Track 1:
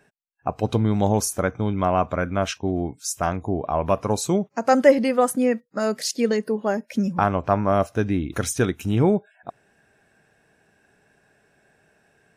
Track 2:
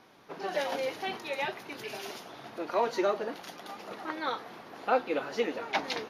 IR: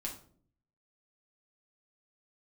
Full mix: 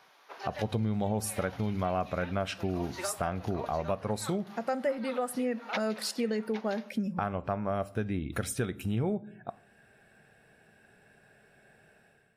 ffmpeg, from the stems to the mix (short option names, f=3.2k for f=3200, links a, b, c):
-filter_complex "[0:a]equalizer=f=315:t=o:w=0.33:g=-6,equalizer=f=1k:t=o:w=0.33:g=-5,equalizer=f=6.3k:t=o:w=0.33:g=-12,dynaudnorm=f=120:g=7:m=12dB,volume=-12dB,asplit=3[a][b][c];[b]volume=-12dB[d];[1:a]highpass=740,volume=0.5dB,asplit=2[e][f];[f]volume=-9dB[g];[c]apad=whole_len=268736[h];[e][h]sidechaincompress=threshold=-36dB:ratio=8:attack=11:release=236[i];[2:a]atrim=start_sample=2205[j];[d][j]afir=irnorm=-1:irlink=0[k];[g]aecho=0:1:808:1[l];[a][i][k][l]amix=inputs=4:normalize=0,acompressor=threshold=-30dB:ratio=2.5"